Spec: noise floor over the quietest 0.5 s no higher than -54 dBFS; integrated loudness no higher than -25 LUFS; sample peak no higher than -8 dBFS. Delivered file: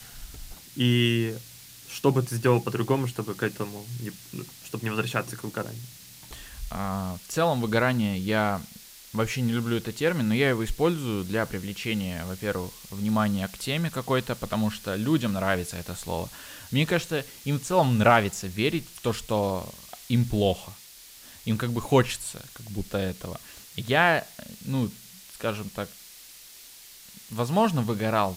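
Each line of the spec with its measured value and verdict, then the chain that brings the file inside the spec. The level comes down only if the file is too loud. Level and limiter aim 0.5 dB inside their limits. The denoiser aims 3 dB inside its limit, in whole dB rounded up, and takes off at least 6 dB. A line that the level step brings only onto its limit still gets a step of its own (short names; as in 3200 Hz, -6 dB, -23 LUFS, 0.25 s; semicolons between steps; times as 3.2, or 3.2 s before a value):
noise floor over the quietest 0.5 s -48 dBFS: fail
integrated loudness -27.0 LUFS: OK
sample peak -6.0 dBFS: fail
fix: denoiser 9 dB, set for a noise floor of -48 dBFS; limiter -8.5 dBFS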